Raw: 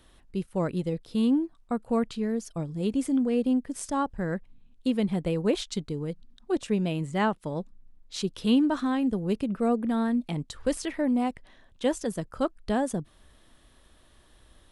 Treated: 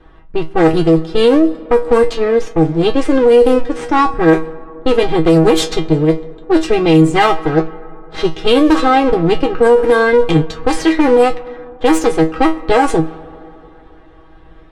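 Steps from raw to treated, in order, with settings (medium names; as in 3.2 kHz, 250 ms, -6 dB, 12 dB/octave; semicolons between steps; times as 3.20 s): comb filter that takes the minimum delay 2.5 ms; feedback comb 160 Hz, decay 0.19 s, harmonics all, mix 90%; on a send at -18 dB: reverberation RT60 3.2 s, pre-delay 7 ms; on the sum: level-controlled noise filter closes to 1.4 kHz, open at -29.5 dBFS; loudness maximiser +28.5 dB; trim -1 dB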